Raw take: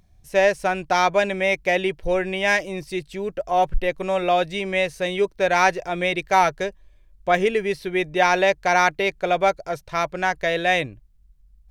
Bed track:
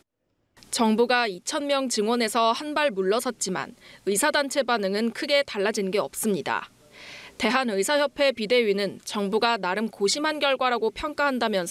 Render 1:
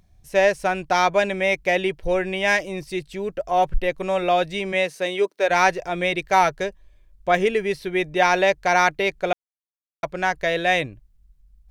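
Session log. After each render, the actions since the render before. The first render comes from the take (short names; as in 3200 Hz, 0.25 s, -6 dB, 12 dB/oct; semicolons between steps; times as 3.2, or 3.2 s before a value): 4.72–5.49 HPF 150 Hz -> 310 Hz 24 dB/oct; 9.33–10.03 mute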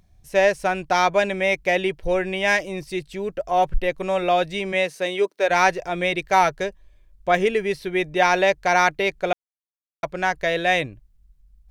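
nothing audible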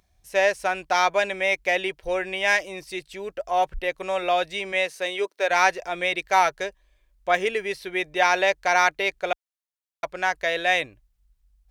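HPF 41 Hz; bell 140 Hz -14 dB 2.6 oct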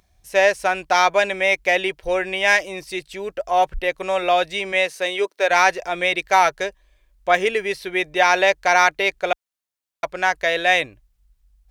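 gain +4.5 dB; limiter -3 dBFS, peak gain reduction 2 dB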